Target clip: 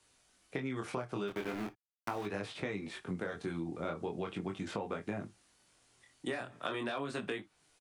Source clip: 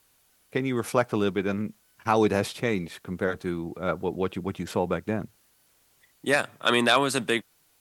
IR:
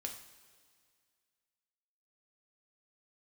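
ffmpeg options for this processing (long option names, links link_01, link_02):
-filter_complex "[0:a]aresample=22050,aresample=44100,asplit=3[link_01][link_02][link_03];[link_01]afade=type=out:start_time=1.27:duration=0.02[link_04];[link_02]aeval=exprs='val(0)*gte(abs(val(0)),0.0473)':channel_layout=same,afade=type=in:start_time=1.27:duration=0.02,afade=type=out:start_time=2.25:duration=0.02[link_05];[link_03]afade=type=in:start_time=2.25:duration=0.02[link_06];[link_04][link_05][link_06]amix=inputs=3:normalize=0,acrossover=split=100|790|3400[link_07][link_08][link_09][link_10];[link_07]acompressor=threshold=-51dB:ratio=4[link_11];[link_08]acompressor=threshold=-28dB:ratio=4[link_12];[link_09]acompressor=threshold=-32dB:ratio=4[link_13];[link_10]acompressor=threshold=-51dB:ratio=4[link_14];[link_11][link_12][link_13][link_14]amix=inputs=4:normalize=0,asplit=2[link_15][link_16];[1:a]atrim=start_sample=2205,afade=type=out:start_time=0.14:duration=0.01,atrim=end_sample=6615,asetrate=66150,aresample=44100[link_17];[link_16][link_17]afir=irnorm=-1:irlink=0,volume=0dB[link_18];[link_15][link_18]amix=inputs=2:normalize=0,flanger=delay=19.5:depth=5.2:speed=0.4,acompressor=threshold=-32dB:ratio=6,volume=-2dB"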